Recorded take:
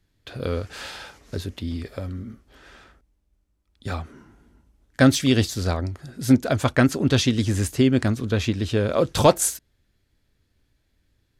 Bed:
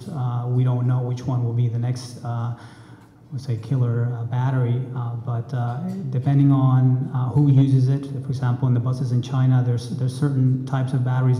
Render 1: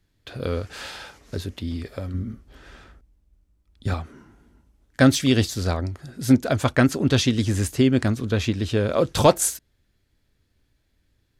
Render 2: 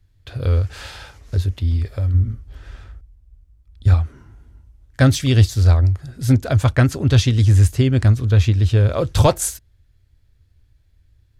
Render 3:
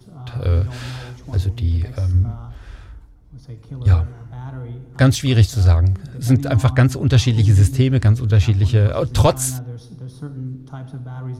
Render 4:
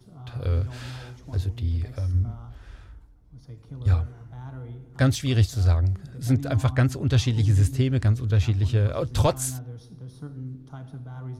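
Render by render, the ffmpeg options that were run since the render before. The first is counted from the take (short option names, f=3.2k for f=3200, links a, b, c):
-filter_complex "[0:a]asettb=1/sr,asplit=3[a][b][c];[a]atrim=end=2.144[d];[b]atrim=start=2.14:end=3.94,asetpts=PTS-STARTPTS,afade=t=in:d=0.004:c=qsin,afade=t=out:st=1.796:d=0.004:c=qsin,lowshelf=f=230:g=8[e];[c]atrim=start=3.936[f];[d][e]acrossfade=d=0.004:c1=hsin:c2=qsin[g];[g][f]acrossfade=d=0.004:c1=qsin:c2=hsin"
-af "lowshelf=f=140:t=q:w=1.5:g=11.5"
-filter_complex "[1:a]volume=-10.5dB[a];[0:a][a]amix=inputs=2:normalize=0"
-af "volume=-7dB"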